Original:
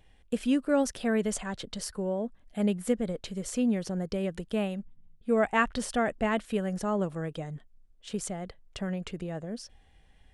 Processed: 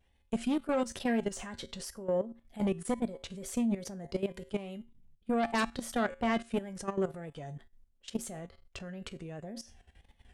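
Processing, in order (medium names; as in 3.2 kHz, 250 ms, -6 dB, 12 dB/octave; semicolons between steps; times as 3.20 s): Chebyshev shaper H 5 -9 dB, 6 -17 dB, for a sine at -11.5 dBFS; reverse; upward compressor, threshold -42 dBFS; reverse; wow and flutter 110 cents; feedback comb 77 Hz, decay 0.28 s, harmonics odd, mix 70%; level held to a coarse grid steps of 14 dB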